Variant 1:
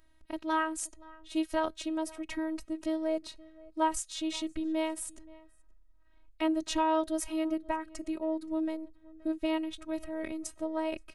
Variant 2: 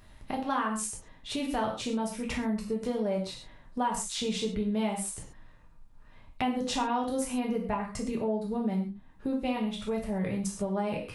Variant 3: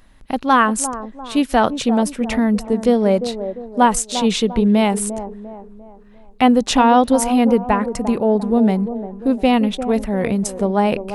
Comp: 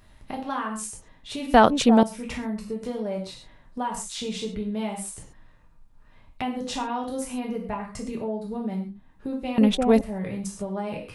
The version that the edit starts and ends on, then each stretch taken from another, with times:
2
0:01.54–0:02.03: punch in from 3
0:09.58–0:10.01: punch in from 3
not used: 1

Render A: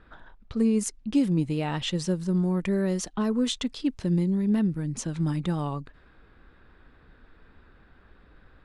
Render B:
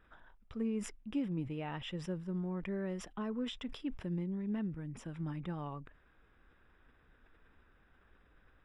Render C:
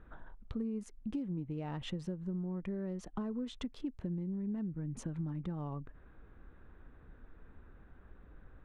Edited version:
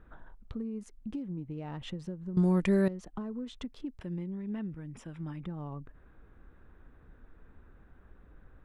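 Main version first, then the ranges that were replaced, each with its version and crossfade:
C
0:02.37–0:02.88: punch in from A
0:04.01–0:05.46: punch in from B

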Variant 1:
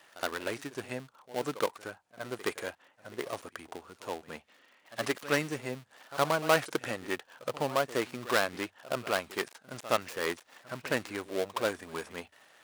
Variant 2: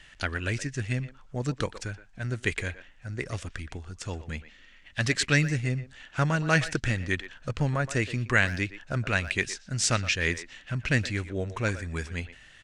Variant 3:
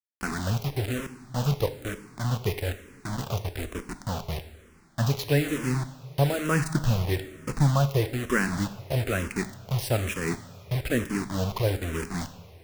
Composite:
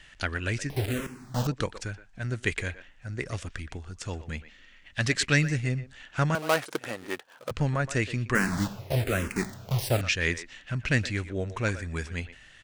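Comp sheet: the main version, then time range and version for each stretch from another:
2
0:00.70–0:01.47: punch in from 3
0:06.35–0:07.51: punch in from 1
0:08.35–0:10.01: punch in from 3

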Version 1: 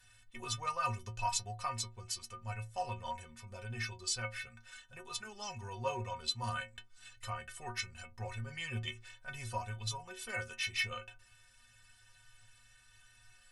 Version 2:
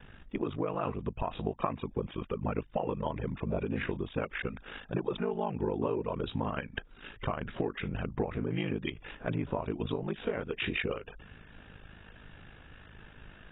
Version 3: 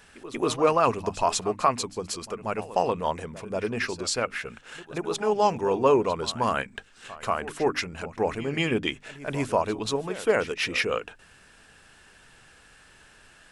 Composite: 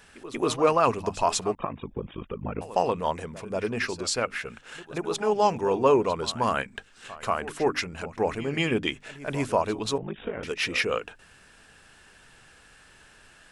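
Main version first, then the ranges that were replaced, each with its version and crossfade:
3
0:01.55–0:02.61: punch in from 2
0:09.98–0:10.43: punch in from 2
not used: 1

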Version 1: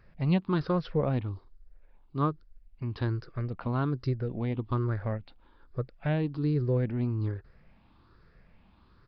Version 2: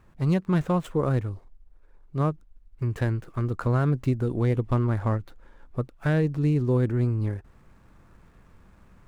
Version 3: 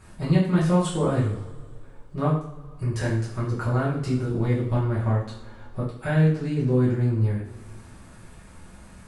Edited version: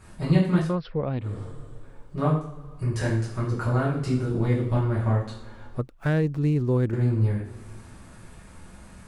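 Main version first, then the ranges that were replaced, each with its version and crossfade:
3
0:00.66–0:01.32: punch in from 1, crossfade 0.24 s
0:05.79–0:06.93: punch in from 2

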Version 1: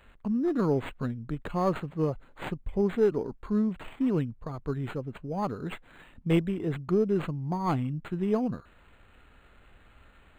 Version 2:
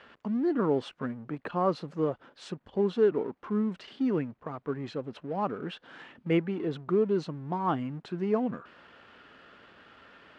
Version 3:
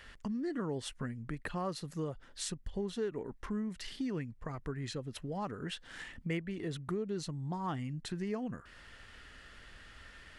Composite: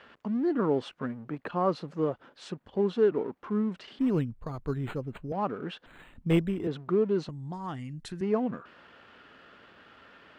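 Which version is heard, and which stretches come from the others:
2
0:03.99–0:05.32: punch in from 1
0:05.86–0:06.67: punch in from 1
0:07.29–0:08.21: punch in from 3

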